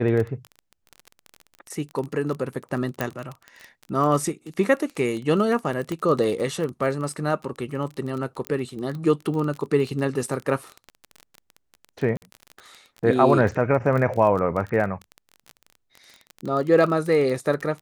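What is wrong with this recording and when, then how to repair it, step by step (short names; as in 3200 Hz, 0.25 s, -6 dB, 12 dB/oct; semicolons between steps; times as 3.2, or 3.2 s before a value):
crackle 24/s -28 dBFS
3.01 pop -10 dBFS
5.92 pop -17 dBFS
8.47 pop -14 dBFS
12.17–12.22 gap 49 ms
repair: de-click; interpolate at 12.17, 49 ms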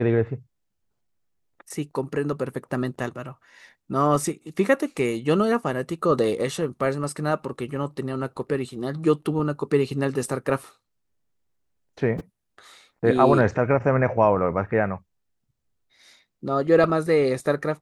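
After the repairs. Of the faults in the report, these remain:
none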